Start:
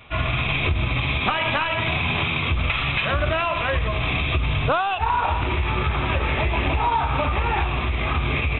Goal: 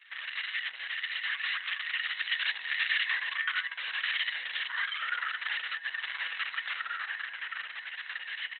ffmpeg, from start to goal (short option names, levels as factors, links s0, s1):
-filter_complex "[0:a]asettb=1/sr,asplit=3[s0][s1][s2];[s0]atrim=end=6.784[s3];[s1]atrim=start=6.78:end=7.94,asetpts=PTS-STARTPTS,afade=t=in:d=0.004:c=qsin,afade=t=out:st=1.156:d=0.004:c=qsin,acrossover=split=3700[s4][s5];[s5]acompressor=threshold=0.00158:ratio=4:attack=1:release=60[s6];[s4][s6]amix=inputs=2:normalize=0[s7];[s2]atrim=start=7.936[s8];[s3][s7]acrossfade=d=0.004:c1=hsin:c2=qsin[s9];[s9][s8]acrossfade=d=0.004:c1=qsin:c2=hsin,flanger=delay=5.1:depth=8:regen=-69:speed=0.78:shape=sinusoidal,aeval=exprs='val(0)*sin(2*PI*460*n/s)':c=same,alimiter=limit=0.075:level=0:latency=1:release=29,asettb=1/sr,asplit=3[s10][s11][s12];[s10]atrim=end=2.144[s13];[s11]atrim=start=2.14:end=2.94,asetpts=PTS-STARTPTS,afade=t=in:d=0.004:c=qsin,afade=t=out:st=0.796:d=0.004:c=qsin,aeval=exprs='0.075*(cos(1*acos(clip(val(0)/0.075,-1,1)))-cos(1*PI/2))+0.0237*(cos(2*acos(clip(val(0)/0.075,-1,1)))-cos(2*PI/2))+0.00188*(cos(4*acos(clip(val(0)/0.075,-1,1)))-cos(4*PI/2))':c=same[s14];[s12]atrim=start=2.936[s15];[s13][s14]acrossfade=d=0.004:c1=hsin:c2=qsin[s16];[s16][s15]acrossfade=d=0.004:c1=qsin:c2=hsin,equalizer=f=1800:w=6.6:g=8.5,aecho=1:1:6.1:0.76,aecho=1:1:43|62:0.158|0.224,dynaudnorm=f=220:g=17:m=1.78,highpass=f=1400:w=0.5412,highpass=f=1400:w=1.3066,volume=0.668" -ar 48000 -c:a libopus -b:a 6k